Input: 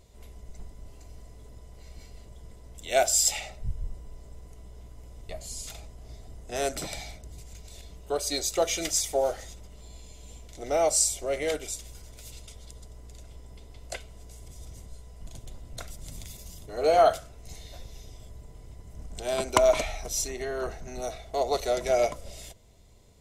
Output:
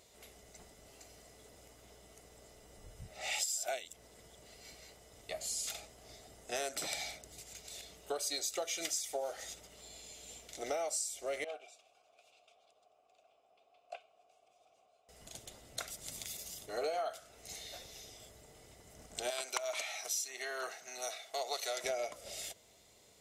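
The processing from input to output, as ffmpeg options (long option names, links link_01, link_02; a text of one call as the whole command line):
ffmpeg -i in.wav -filter_complex "[0:a]asettb=1/sr,asplit=3[link_01][link_02][link_03];[link_01]atrim=end=11.444[link_04];[link_02]atrim=start=11.44:end=15.09,asetpts=PTS-STARTPTS,afade=type=in:duration=0.004:curve=qsin,afade=type=out:start_time=3.646:duration=0.004:curve=qsin,asplit=3[link_05][link_06][link_07];[link_05]bandpass=frequency=730:width_type=q:width=8,volume=0dB[link_08];[link_06]bandpass=frequency=1090:width_type=q:width=8,volume=-6dB[link_09];[link_07]bandpass=frequency=2440:width_type=q:width=8,volume=-9dB[link_10];[link_08][link_09][link_10]amix=inputs=3:normalize=0[link_11];[link_03]atrim=start=15.086[link_12];[link_04][link_11]acrossfade=duration=0.004:curve1=hsin:curve2=qsin[link_13];[link_13][link_12]acrossfade=duration=0.004:curve1=qsin:curve2=hsin,asettb=1/sr,asplit=3[link_14][link_15][link_16];[link_14]atrim=end=19.304[link_17];[link_15]atrim=start=19.3:end=21.84,asetpts=PTS-STARTPTS,afade=type=in:duration=0.004:curve=qsin,afade=type=out:start_time=2.536:duration=0.004:curve=qsin,highpass=frequency=1300:poles=1[link_18];[link_16]atrim=start=21.836[link_19];[link_17][link_18]acrossfade=duration=0.004:curve1=hsin:curve2=qsin[link_20];[link_20][link_19]acrossfade=duration=0.004:curve1=qsin:curve2=hsin,asplit=3[link_21][link_22][link_23];[link_21]atrim=end=1.562[link_24];[link_22]atrim=start=1.558:end=5.152,asetpts=PTS-STARTPTS,areverse[link_25];[link_23]atrim=start=5.148[link_26];[link_24][link_25]acrossfade=duration=0.004:curve1=hsin:curve2=hsin[link_27];[link_27][link_26]acrossfade=duration=0.004:curve1=hsin:curve2=hsin,highpass=frequency=750:poles=1,bandreject=frequency=1000:width=13,acompressor=threshold=-36dB:ratio=16,volume=2.5dB" out.wav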